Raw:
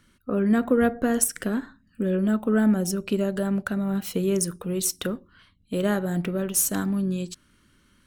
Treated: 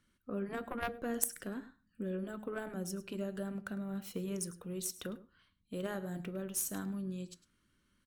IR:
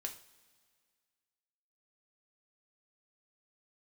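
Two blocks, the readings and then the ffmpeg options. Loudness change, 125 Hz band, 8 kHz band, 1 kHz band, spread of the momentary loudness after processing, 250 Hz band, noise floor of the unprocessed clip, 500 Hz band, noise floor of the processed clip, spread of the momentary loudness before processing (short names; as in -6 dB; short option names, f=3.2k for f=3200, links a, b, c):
-15.0 dB, -14.5 dB, -12.5 dB, -12.0 dB, 10 LU, -16.5 dB, -62 dBFS, -14.5 dB, -76 dBFS, 10 LU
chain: -filter_complex "[0:a]aecho=1:1:104:0.141,aeval=exprs='0.501*(cos(1*acos(clip(val(0)/0.501,-1,1)))-cos(1*PI/2))+0.2*(cos(3*acos(clip(val(0)/0.501,-1,1)))-cos(3*PI/2))+0.0398*(cos(5*acos(clip(val(0)/0.501,-1,1)))-cos(5*PI/2))':c=same,asplit=2[a][b];[1:a]atrim=start_sample=2205,afade=t=out:st=0.31:d=0.01,atrim=end_sample=14112,asetrate=70560,aresample=44100[c];[b][c]afir=irnorm=-1:irlink=0,volume=-3.5dB[d];[a][d]amix=inputs=2:normalize=0,afftfilt=real='re*lt(hypot(re,im),0.224)':imag='im*lt(hypot(re,im),0.224)':win_size=1024:overlap=0.75,volume=-2dB"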